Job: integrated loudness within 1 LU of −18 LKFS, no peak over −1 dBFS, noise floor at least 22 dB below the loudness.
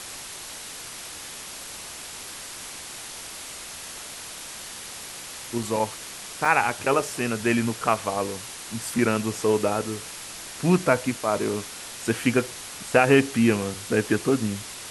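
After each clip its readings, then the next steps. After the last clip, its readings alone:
number of dropouts 2; longest dropout 3.3 ms; background noise floor −39 dBFS; target noise floor −49 dBFS; integrated loudness −26.5 LKFS; sample peak −4.5 dBFS; target loudness −18.0 LKFS
→ repair the gap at 0:05.63/0:06.45, 3.3 ms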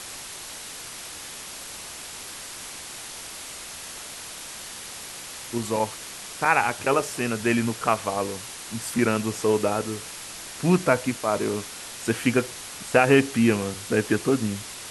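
number of dropouts 0; background noise floor −39 dBFS; target noise floor −49 dBFS
→ broadband denoise 10 dB, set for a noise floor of −39 dBFS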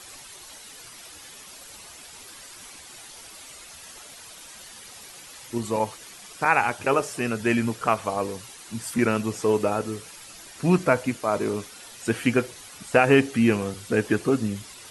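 background noise floor −45 dBFS; target noise floor −47 dBFS
→ broadband denoise 6 dB, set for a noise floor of −45 dBFS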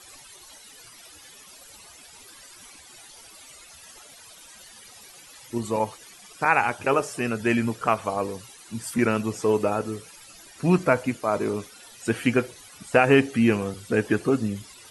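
background noise floor −49 dBFS; integrated loudness −24.5 LKFS; sample peak −4.5 dBFS; target loudness −18.0 LKFS
→ level +6.5 dB
brickwall limiter −1 dBFS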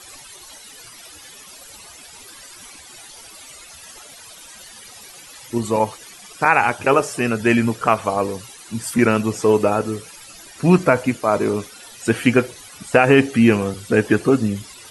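integrated loudness −18.5 LKFS; sample peak −1.0 dBFS; background noise floor −42 dBFS

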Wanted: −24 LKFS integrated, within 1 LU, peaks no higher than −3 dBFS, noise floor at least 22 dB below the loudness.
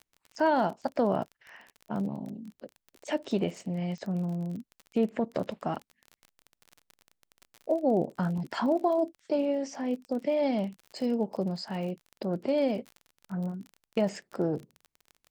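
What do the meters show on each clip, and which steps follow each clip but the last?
crackle rate 31 per second; integrated loudness −31.0 LKFS; sample peak −14.5 dBFS; target loudness −24.0 LKFS
→ click removal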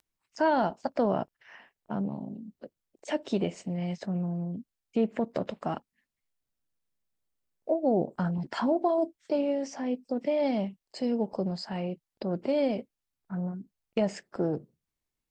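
crackle rate 0.065 per second; integrated loudness −31.0 LKFS; sample peak −14.5 dBFS; target loudness −24.0 LKFS
→ level +7 dB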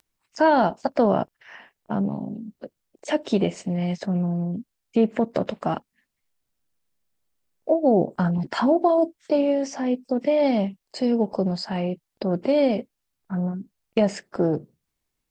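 integrated loudness −24.0 LKFS; sample peak −7.5 dBFS; background noise floor −80 dBFS

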